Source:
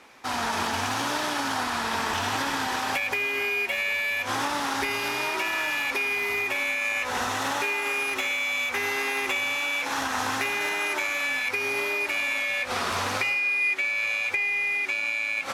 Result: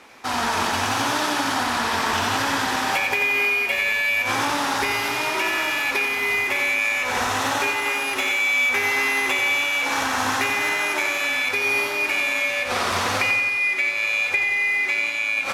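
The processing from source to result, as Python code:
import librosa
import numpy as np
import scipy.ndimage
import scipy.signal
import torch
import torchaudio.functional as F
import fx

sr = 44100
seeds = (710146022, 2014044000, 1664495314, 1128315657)

y = fx.echo_feedback(x, sr, ms=90, feedback_pct=58, wet_db=-7)
y = F.gain(torch.from_numpy(y), 4.0).numpy()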